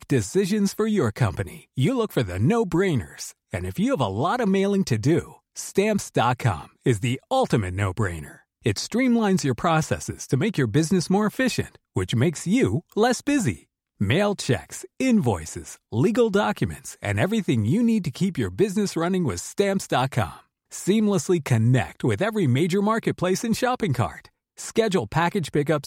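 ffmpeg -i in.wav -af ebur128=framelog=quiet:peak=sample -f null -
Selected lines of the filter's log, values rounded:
Integrated loudness:
  I:         -23.4 LUFS
  Threshold: -33.7 LUFS
Loudness range:
  LRA:         1.6 LU
  Threshold: -43.6 LUFS
  LRA low:   -24.4 LUFS
  LRA high:  -22.8 LUFS
Sample peak:
  Peak:       -7.1 dBFS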